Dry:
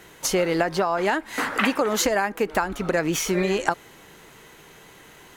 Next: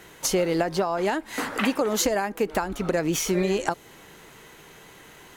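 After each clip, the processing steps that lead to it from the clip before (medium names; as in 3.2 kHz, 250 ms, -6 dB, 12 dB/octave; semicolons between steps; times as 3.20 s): dynamic bell 1.6 kHz, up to -6 dB, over -34 dBFS, Q 0.7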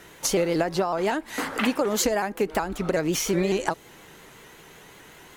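vibrato with a chosen wave saw up 5.4 Hz, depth 100 cents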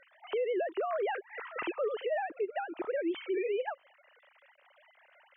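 formants replaced by sine waves; peak limiter -19.5 dBFS, peak gain reduction 9 dB; trim -6 dB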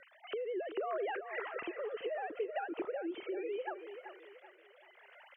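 compression, threshold -40 dBFS, peak gain reduction 11 dB; rotary cabinet horn 0.7 Hz; on a send: feedback delay 383 ms, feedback 38%, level -10 dB; on the sum: trim +5.5 dB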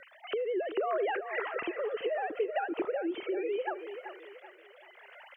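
reverberation, pre-delay 55 ms, DRR 25.5 dB; trim +6 dB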